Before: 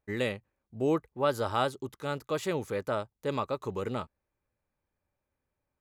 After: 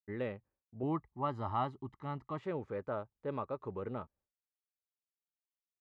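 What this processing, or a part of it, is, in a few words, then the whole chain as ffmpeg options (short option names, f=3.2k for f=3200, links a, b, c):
hearing-loss simulation: -filter_complex "[0:a]asettb=1/sr,asplit=3[a][b][c];[a]atrim=end=0.834[d];[b]atrim=start=0.83:end=2.39,asetpts=PTS-STARTPTS,afade=t=in:d=0.004:c=qsin,afade=t=out:st=1.556:d=0.004:c=qsin,aecho=1:1:1:0.79,atrim=end_sample=68796[e];[c]atrim=start=2.386[f];[d][e]acrossfade=d=0.004:c1=hsin:c2=qsin[g];[g][f]acrossfade=d=0.004:c1=qsin:c2=hsin,lowpass=1.6k,agate=range=-33dB:threshold=-59dB:ratio=3:detection=peak,volume=-6.5dB"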